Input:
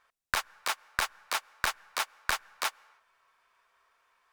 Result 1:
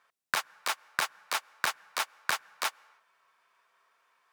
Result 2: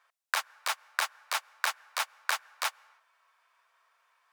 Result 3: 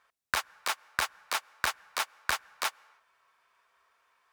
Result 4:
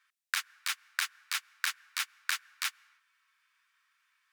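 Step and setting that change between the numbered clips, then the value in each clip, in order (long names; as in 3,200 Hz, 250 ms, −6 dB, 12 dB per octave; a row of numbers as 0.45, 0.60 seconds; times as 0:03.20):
high-pass filter, corner frequency: 130, 540, 48, 1,500 Hertz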